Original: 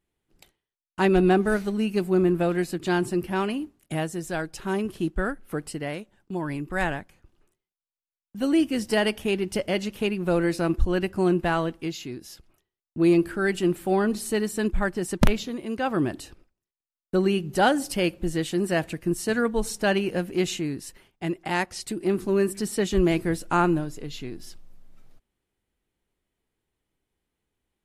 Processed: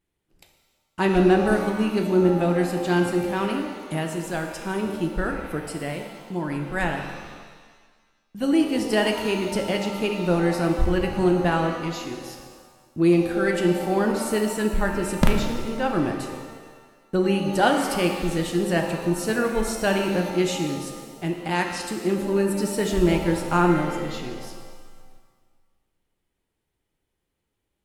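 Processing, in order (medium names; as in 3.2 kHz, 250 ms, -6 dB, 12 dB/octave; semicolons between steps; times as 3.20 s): vibrato 2.3 Hz 8.8 cents; pitch-shifted reverb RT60 1.5 s, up +7 st, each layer -8 dB, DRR 3.5 dB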